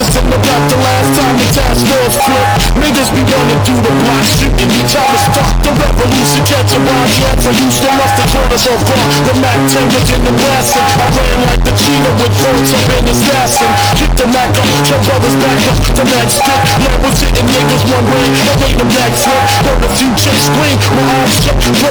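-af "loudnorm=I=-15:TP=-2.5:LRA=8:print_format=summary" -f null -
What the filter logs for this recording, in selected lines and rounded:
Input Integrated:     -8.8 LUFS
Input True Peak:      -3.6 dBTP
Input LRA:             0.2 LU
Input Threshold:     -18.8 LUFS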